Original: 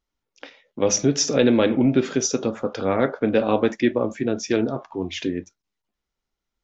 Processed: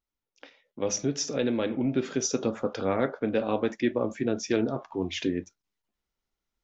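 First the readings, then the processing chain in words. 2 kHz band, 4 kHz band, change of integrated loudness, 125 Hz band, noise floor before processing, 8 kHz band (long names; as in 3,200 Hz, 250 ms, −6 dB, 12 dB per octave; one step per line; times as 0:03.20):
−6.5 dB, −7.0 dB, −7.0 dB, −7.0 dB, −84 dBFS, can't be measured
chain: speech leveller within 4 dB 0.5 s
level −6.5 dB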